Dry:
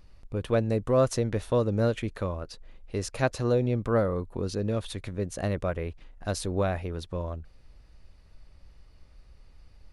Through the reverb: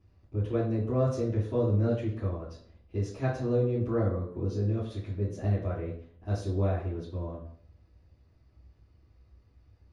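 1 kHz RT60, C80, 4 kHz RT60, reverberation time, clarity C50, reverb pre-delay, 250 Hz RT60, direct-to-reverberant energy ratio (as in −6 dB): 0.55 s, 8.5 dB, 0.50 s, 0.55 s, 5.0 dB, 3 ms, 0.65 s, −11.0 dB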